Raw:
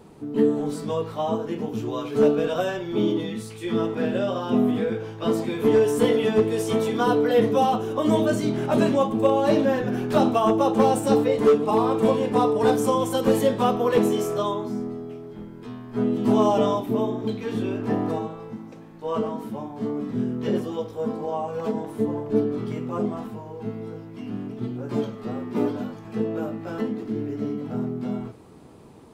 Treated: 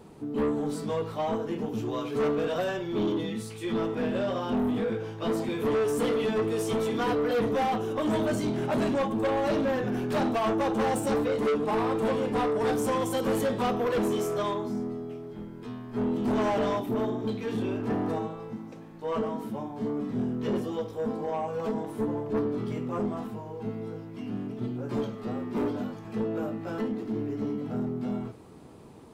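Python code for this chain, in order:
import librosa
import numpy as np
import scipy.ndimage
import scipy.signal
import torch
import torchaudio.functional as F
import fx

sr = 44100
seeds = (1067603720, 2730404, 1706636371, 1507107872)

y = 10.0 ** (-21.0 / 20.0) * np.tanh(x / 10.0 ** (-21.0 / 20.0))
y = y * 10.0 ** (-1.5 / 20.0)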